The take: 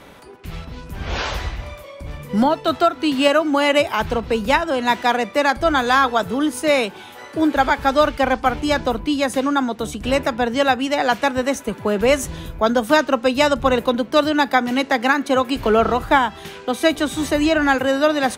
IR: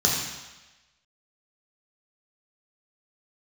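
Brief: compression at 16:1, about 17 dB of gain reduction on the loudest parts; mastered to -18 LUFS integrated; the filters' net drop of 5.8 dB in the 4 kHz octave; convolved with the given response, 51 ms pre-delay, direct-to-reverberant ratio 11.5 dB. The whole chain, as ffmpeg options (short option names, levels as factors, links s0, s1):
-filter_complex "[0:a]equalizer=f=4000:t=o:g=-8,acompressor=threshold=0.0398:ratio=16,asplit=2[s0][s1];[1:a]atrim=start_sample=2205,adelay=51[s2];[s1][s2]afir=irnorm=-1:irlink=0,volume=0.0531[s3];[s0][s3]amix=inputs=2:normalize=0,volume=5.31"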